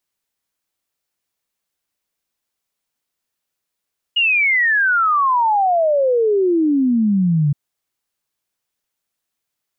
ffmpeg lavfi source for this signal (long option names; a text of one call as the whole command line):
ffmpeg -f lavfi -i "aevalsrc='0.237*clip(min(t,3.37-t)/0.01,0,1)*sin(2*PI*2900*3.37/log(140/2900)*(exp(log(140/2900)*t/3.37)-1))':duration=3.37:sample_rate=44100" out.wav